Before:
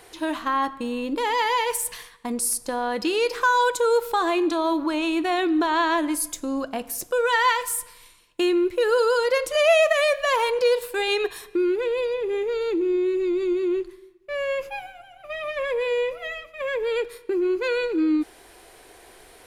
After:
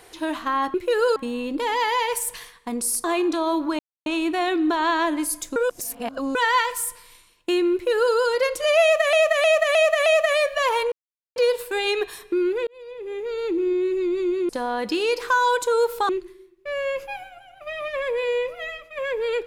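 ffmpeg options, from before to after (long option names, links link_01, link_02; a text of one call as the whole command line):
ffmpeg -i in.wav -filter_complex "[0:a]asplit=15[link_01][link_02][link_03][link_04][link_05][link_06][link_07][link_08][link_09][link_10][link_11][link_12][link_13][link_14][link_15];[link_01]atrim=end=0.742[link_16];[link_02]atrim=start=8.638:end=9.062[link_17];[link_03]atrim=start=0.738:end=2.622[link_18];[link_04]atrim=start=4.218:end=4.97,asetpts=PTS-STARTPTS,afade=type=out:start_time=0.748:duration=0.004:curve=hsin,apad=pad_dur=0.27[link_19];[link_05]atrim=start=4.97:end=6.472,asetpts=PTS-STARTPTS,afade=type=in:duration=0.004:curve=hsin[link_20];[link_06]atrim=start=6.468:end=7.262,asetpts=PTS-STARTPTS,areverse[link_21];[link_07]atrim=start=7.258:end=10.042[link_22];[link_08]atrim=start=9.728:end=10.042[link_23];[link_09]atrim=start=9.728:end=10.042[link_24];[link_10]atrim=start=9.728:end=10.042[link_25];[link_11]atrim=start=9.728:end=10.59,asetpts=PTS-STARTPTS,afade=type=out:start_time=0.858:duration=0.004:curve=hsin,apad=pad_dur=0.44[link_26];[link_12]atrim=start=10.59:end=11.9,asetpts=PTS-STARTPTS,afade=type=in:duration=0.004:curve=hsin,afade=type=out:start_time=1.306:duration=0.004:curve=hsin[link_27];[link_13]atrim=start=11.9:end=13.722,asetpts=PTS-STARTPTS,afade=type=in:duration=0.89[link_28];[link_14]atrim=start=2.618:end=4.222[link_29];[link_15]atrim=start=13.718[link_30];[link_16][link_17]acrossfade=duration=0.004:curve1=hsin:curve2=hsin[link_31];[link_31][link_18]acrossfade=duration=0.004:curve1=hsin:curve2=hsin[link_32];[link_19][link_20]concat=n=2:v=0:a=1[link_33];[link_32][link_33]acrossfade=duration=0.004:curve1=hsin:curve2=hsin[link_34];[link_34][link_21]acrossfade=duration=0.004:curve1=hsin:curve2=hsin[link_35];[link_35][link_22]acrossfade=duration=0.004:curve1=hsin:curve2=hsin[link_36];[link_36][link_23]acrossfade=duration=0.004:curve1=hsin:curve2=hsin[link_37];[link_37][link_24]acrossfade=duration=0.004:curve1=hsin:curve2=hsin[link_38];[link_38][link_25]acrossfade=duration=0.004:curve1=hsin:curve2=hsin[link_39];[link_26][link_27][link_28]concat=n=3:v=0:a=1[link_40];[link_39][link_40]acrossfade=duration=0.004:curve1=hsin:curve2=hsin[link_41];[link_41][link_29]acrossfade=duration=0.004:curve1=hsin:curve2=hsin[link_42];[link_42][link_30]acrossfade=duration=0.004:curve1=hsin:curve2=hsin" out.wav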